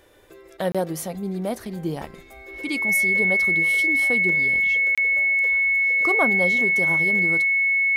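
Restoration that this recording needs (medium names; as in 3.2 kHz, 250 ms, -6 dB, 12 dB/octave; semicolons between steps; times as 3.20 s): band-stop 2.2 kHz, Q 30; interpolate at 0.72/4.95 s, 26 ms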